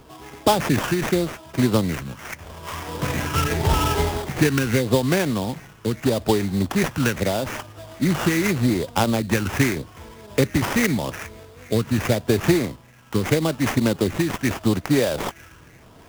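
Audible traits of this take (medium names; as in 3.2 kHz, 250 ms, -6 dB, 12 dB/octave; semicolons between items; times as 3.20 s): phasing stages 12, 0.82 Hz, lowest notch 710–3700 Hz; aliases and images of a low sample rate 4.2 kHz, jitter 20%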